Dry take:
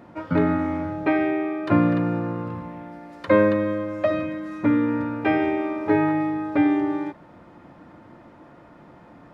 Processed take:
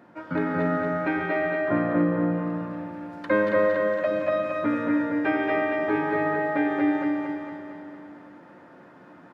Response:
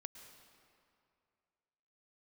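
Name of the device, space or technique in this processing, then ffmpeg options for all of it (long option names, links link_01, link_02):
stadium PA: -filter_complex "[0:a]asettb=1/sr,asplit=3[link_01][link_02][link_03];[link_01]atrim=end=1.654[link_04];[link_02]atrim=start=1.65:end=2.31,asetpts=PTS-STARTPTS,afade=type=in:duration=0.004:curve=qsin,afade=type=out:start_time=0.656:duration=0.004:curve=qsin,lowpass=1200[link_05];[link_03]atrim=start=2.306[link_06];[link_04][link_05]acrossfade=duration=0.004:curve1=hsin:curve2=qsin[link_07];[link_07][link_06]acrossfade=duration=0.004:curve1=qsin:curve2=hsin,highpass=150,equalizer=frequency=1600:width_type=o:width=0.37:gain=7,aecho=1:1:239.1|285.7:0.708|0.251[link_08];[1:a]atrim=start_sample=2205[link_09];[link_08][link_09]afir=irnorm=-1:irlink=0,aecho=1:1:228|456|684|912|1140|1368|1596:0.596|0.328|0.18|0.0991|0.0545|0.03|0.0165"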